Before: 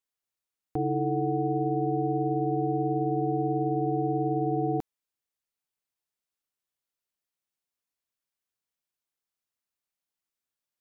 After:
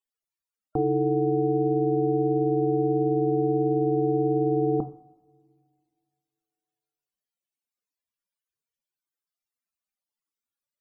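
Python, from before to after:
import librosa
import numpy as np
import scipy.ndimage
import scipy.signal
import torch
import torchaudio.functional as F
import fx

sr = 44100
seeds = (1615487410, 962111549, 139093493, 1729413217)

y = fx.spec_topn(x, sr, count=64)
y = fx.rev_double_slope(y, sr, seeds[0], early_s=0.49, late_s=2.3, knee_db=-22, drr_db=8.5)
y = F.gain(torch.from_numpy(y), 4.0).numpy()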